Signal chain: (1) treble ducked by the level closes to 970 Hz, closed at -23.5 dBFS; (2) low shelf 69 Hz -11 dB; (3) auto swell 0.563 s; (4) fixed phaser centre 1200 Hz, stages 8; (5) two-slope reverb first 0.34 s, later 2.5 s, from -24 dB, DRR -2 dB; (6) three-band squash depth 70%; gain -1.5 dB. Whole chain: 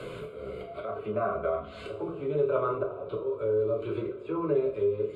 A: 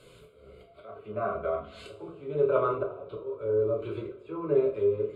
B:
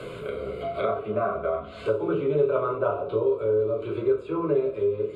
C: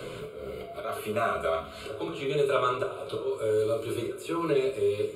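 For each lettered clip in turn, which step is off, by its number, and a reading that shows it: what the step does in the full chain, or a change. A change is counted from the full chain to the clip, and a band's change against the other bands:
6, crest factor change +3.0 dB; 3, crest factor change -1.5 dB; 1, 2 kHz band +7.5 dB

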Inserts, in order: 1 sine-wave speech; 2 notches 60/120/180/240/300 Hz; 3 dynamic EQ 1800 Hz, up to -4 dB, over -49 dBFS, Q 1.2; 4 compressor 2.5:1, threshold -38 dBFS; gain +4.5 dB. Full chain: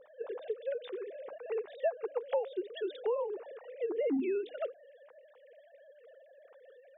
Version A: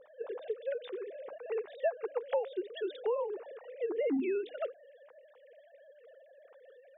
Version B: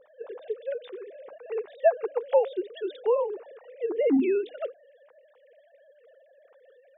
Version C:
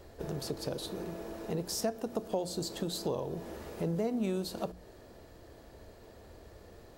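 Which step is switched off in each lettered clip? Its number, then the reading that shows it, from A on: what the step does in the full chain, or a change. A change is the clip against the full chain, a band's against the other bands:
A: 3, 2 kHz band +2.0 dB; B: 4, mean gain reduction 3.5 dB; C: 1, 250 Hz band +5.0 dB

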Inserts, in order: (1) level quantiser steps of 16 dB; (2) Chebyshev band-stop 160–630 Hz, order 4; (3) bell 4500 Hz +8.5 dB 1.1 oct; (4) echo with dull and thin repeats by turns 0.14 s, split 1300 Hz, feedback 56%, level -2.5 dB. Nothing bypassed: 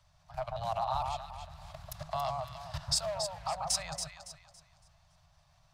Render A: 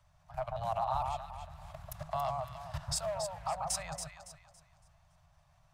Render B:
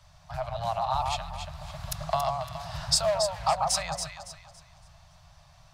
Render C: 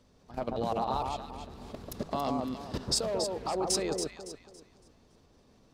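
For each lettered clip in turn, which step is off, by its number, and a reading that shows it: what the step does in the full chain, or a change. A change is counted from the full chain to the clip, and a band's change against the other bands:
3, 4 kHz band -7.0 dB; 1, loudness change +6.0 LU; 2, 250 Hz band +17.0 dB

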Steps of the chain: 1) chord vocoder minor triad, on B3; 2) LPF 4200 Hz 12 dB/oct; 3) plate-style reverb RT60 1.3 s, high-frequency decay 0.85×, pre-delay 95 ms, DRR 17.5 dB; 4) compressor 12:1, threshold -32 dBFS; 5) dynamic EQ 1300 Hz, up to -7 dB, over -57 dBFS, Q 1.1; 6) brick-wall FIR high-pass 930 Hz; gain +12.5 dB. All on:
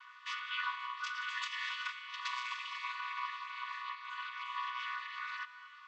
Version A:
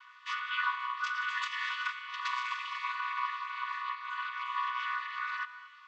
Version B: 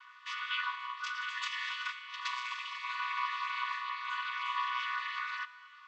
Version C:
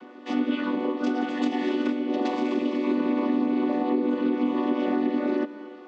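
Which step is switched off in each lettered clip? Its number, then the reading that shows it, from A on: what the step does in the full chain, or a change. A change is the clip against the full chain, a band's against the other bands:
5, 1 kHz band +5.0 dB; 4, mean gain reduction 3.0 dB; 6, crest factor change -4.0 dB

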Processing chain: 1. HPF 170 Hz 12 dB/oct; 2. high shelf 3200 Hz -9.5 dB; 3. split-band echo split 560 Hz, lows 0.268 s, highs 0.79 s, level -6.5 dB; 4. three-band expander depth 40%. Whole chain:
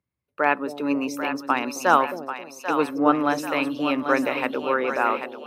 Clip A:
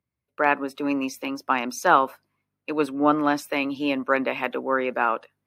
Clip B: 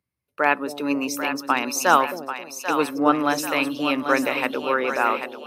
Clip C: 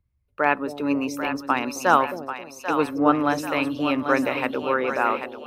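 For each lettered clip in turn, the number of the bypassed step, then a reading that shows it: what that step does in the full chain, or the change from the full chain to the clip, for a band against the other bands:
3, momentary loudness spread change +1 LU; 2, 8 kHz band +8.0 dB; 1, 125 Hz band +4.5 dB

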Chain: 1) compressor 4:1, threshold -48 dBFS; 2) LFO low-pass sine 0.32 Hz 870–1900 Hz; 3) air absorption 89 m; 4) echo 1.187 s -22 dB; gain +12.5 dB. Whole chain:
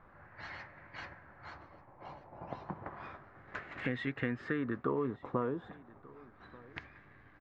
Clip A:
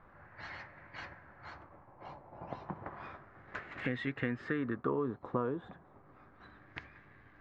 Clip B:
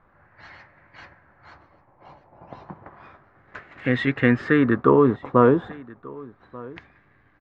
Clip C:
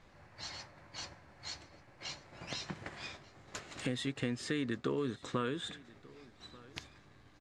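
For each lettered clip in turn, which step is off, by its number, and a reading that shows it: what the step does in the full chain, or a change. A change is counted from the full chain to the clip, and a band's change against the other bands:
4, momentary loudness spread change +1 LU; 1, mean gain reduction 8.0 dB; 2, 4 kHz band +14.5 dB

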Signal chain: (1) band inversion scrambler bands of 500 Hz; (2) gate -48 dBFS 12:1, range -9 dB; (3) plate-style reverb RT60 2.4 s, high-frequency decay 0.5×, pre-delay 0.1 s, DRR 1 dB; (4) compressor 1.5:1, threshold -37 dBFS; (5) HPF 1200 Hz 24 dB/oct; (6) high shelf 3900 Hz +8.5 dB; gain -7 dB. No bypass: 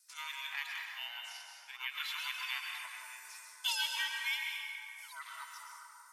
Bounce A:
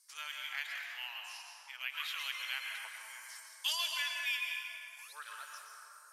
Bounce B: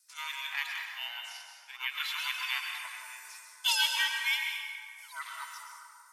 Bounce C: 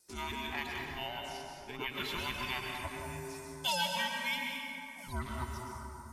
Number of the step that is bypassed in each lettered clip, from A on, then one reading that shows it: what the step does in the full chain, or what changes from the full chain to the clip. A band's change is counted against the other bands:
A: 1, 1 kHz band -1.5 dB; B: 4, mean gain reduction 3.5 dB; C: 5, 1 kHz band +8.5 dB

